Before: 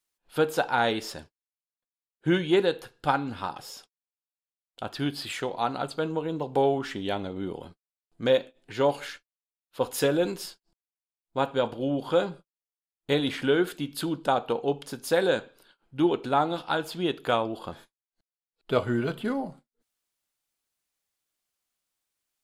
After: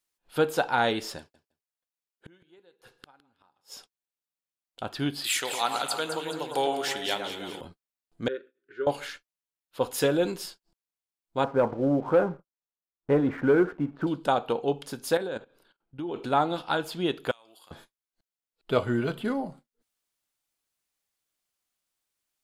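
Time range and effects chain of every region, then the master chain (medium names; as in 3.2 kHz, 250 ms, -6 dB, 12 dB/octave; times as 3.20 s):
1.18–3.74 s: inverted gate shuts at -29 dBFS, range -34 dB + bass shelf 170 Hz -8 dB + feedback delay 161 ms, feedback 16%, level -17 dB
5.24–7.61 s: tilt EQ +4.5 dB/octave + echo whose repeats swap between lows and highs 105 ms, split 1.8 kHz, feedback 68%, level -5 dB
8.28–8.87 s: two resonant band-passes 760 Hz, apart 1.9 oct + peaking EQ 880 Hz -7 dB 0.62 oct
11.44–14.07 s: low-pass 1.6 kHz 24 dB/octave + waveshaping leveller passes 1
15.17–16.16 s: treble shelf 2.1 kHz -6.5 dB + level held to a coarse grid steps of 16 dB
17.31–17.71 s: differentiator + compression, threshold -50 dBFS
whole clip: none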